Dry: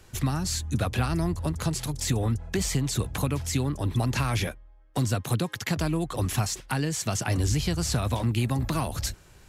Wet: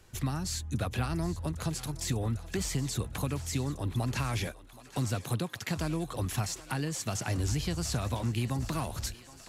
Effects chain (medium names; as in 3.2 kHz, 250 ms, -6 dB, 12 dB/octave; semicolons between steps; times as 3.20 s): thinning echo 772 ms, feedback 75%, high-pass 440 Hz, level -16 dB; trim -5.5 dB